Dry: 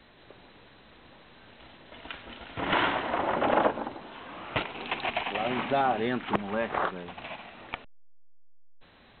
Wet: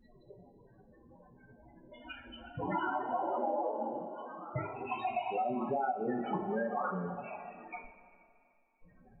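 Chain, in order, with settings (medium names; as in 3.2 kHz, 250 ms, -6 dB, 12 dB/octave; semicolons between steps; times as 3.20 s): loudest bins only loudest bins 8; two-slope reverb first 0.28 s, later 2.5 s, from -18 dB, DRR -2.5 dB; compression 10:1, threshold -28 dBFS, peak gain reduction 12.5 dB; trim -1.5 dB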